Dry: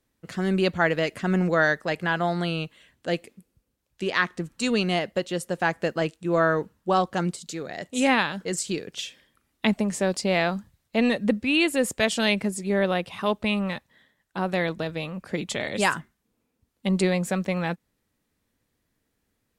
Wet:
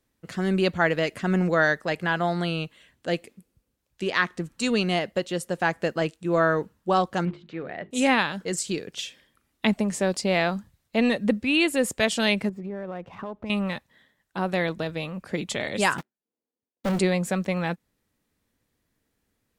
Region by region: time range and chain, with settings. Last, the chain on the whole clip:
0:07.25–0:07.91: one scale factor per block 5 bits + low-pass filter 2,700 Hz 24 dB per octave + mains-hum notches 50/100/150/200/250/300/350/400/450 Hz
0:12.49–0:13.50: low-pass filter 1,400 Hz + downward compressor 8 to 1, threshold −30 dBFS + windowed peak hold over 3 samples
0:15.98–0:16.99: running median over 41 samples + high-pass filter 390 Hz + leveller curve on the samples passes 5
whole clip: no processing

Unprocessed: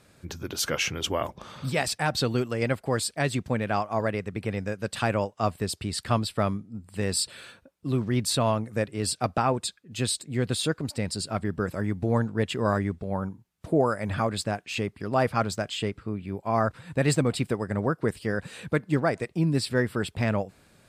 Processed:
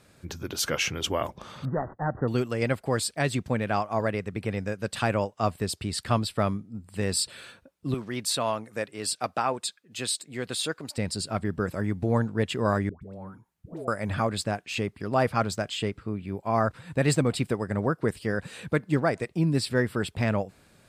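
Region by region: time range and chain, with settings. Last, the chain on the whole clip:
0:01.65–0:02.28: running median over 25 samples + linear-phase brick-wall low-pass 2,000 Hz
0:07.94–0:10.98: de-essing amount 35% + high-pass filter 220 Hz 6 dB per octave + low-shelf EQ 440 Hz −6.5 dB
0:12.89–0:13.88: parametric band 4,600 Hz −3.5 dB 2.1 octaves + downward compressor 2.5 to 1, threshold −41 dBFS + all-pass dispersion highs, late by 127 ms, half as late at 790 Hz
whole clip: no processing

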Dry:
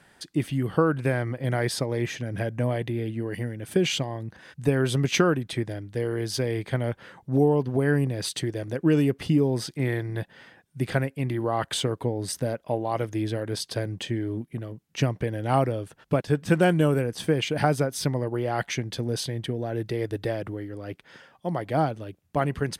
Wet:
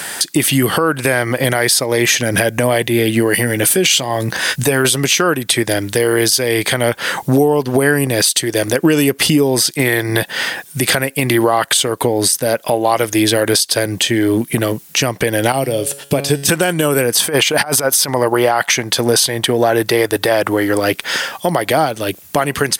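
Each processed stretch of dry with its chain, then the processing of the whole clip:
0:03.34–0:04.85: downward compressor 2 to 1, threshold −28 dBFS + high-pass filter 40 Hz + double-tracking delay 16 ms −11 dB
0:15.52–0:16.49: parametric band 1,300 Hz −11 dB 1 octave + tuned comb filter 140 Hz, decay 0.59 s
0:17.20–0:20.80: parametric band 1,000 Hz +7.5 dB 1.5 octaves + compressor whose output falls as the input rises −24 dBFS, ratio −0.5
whole clip: RIAA equalisation recording; downward compressor 6 to 1, threshold −39 dBFS; boost into a limiter +29.5 dB; level −1 dB

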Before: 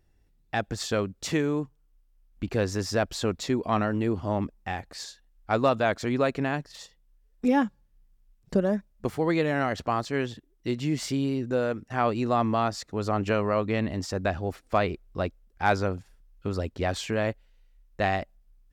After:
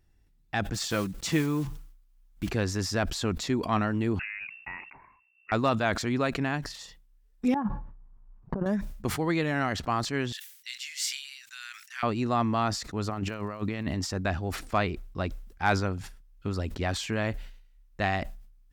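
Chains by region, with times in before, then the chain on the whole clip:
0:00.74–0:02.50: one scale factor per block 5 bits + comb filter 6 ms, depth 40%
0:04.19–0:05.52: low-shelf EQ 230 Hz −9 dB + downward compressor 5 to 1, threshold −34 dBFS + voice inversion scrambler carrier 2,700 Hz
0:07.54–0:08.66: compressor whose output falls as the input rises −30 dBFS, ratio −0.5 + low-pass with resonance 1,000 Hz, resonance Q 2.8
0:10.32–0:12.03: inverse Chebyshev high-pass filter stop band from 520 Hz, stop band 60 dB + high-shelf EQ 4,100 Hz +7.5 dB
0:13.09–0:13.93: high-pass filter 60 Hz + compressor whose output falls as the input rises −30 dBFS, ratio −0.5 + surface crackle 140 per second −51 dBFS
whole clip: parametric band 520 Hz −6.5 dB 0.94 octaves; level that may fall only so fast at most 77 dB per second

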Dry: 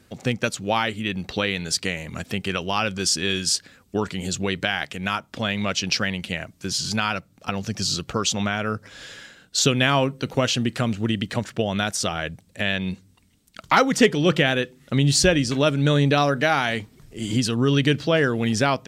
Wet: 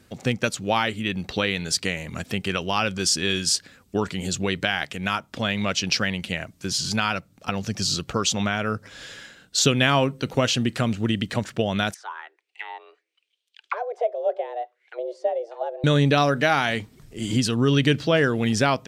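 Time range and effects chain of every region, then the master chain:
0:11.94–0:15.84: envelope filter 350–3,000 Hz, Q 3.9, down, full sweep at −16 dBFS + frequency shifter +230 Hz
whole clip: no processing

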